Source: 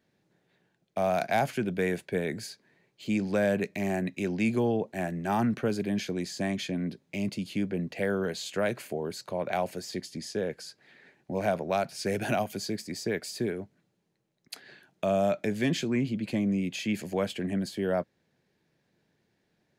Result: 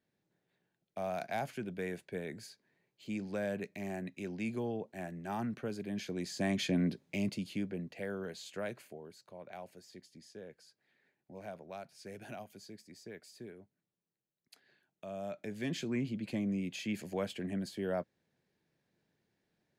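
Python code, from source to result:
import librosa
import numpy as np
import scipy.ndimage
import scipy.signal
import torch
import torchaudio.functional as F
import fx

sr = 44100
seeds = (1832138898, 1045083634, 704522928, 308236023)

y = fx.gain(x, sr, db=fx.line((5.83, -10.5), (6.79, 1.5), (8.0, -11.0), (8.68, -11.0), (9.12, -18.0), (15.04, -18.0), (15.89, -7.0)))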